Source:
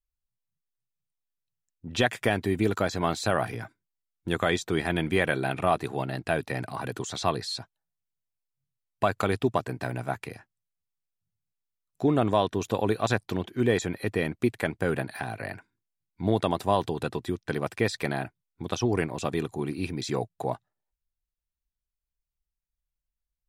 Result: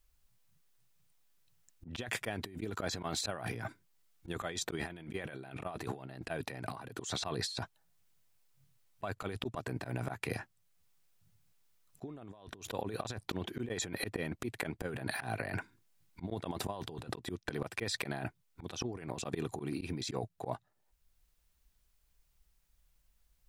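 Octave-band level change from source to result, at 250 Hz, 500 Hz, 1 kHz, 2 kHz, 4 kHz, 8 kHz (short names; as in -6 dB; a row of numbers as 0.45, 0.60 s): -12.5, -13.5, -13.0, -10.0, -6.0, -2.5 dB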